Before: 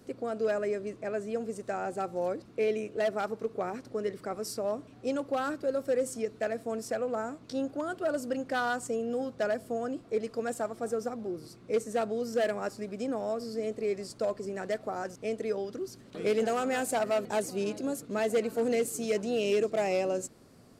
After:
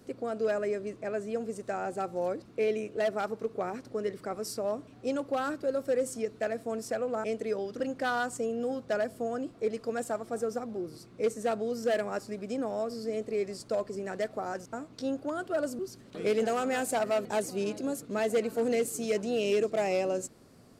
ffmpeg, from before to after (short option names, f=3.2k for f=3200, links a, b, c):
-filter_complex "[0:a]asplit=5[a][b][c][d][e];[a]atrim=end=7.242[f];[b]atrim=start=15.228:end=15.792[g];[c]atrim=start=8.298:end=15.232[h];[d]atrim=start=7.238:end=8.302[i];[e]atrim=start=15.788[j];[f][g]acrossfade=d=0.004:c1=hsin:c2=hsin[k];[k][h]acrossfade=d=0.004:c1=hsin:c2=hsin[l];[l][i]acrossfade=d=0.004:c1=hsin:c2=hsin[m];[m][j]acrossfade=d=0.004:c1=hsin:c2=hsin"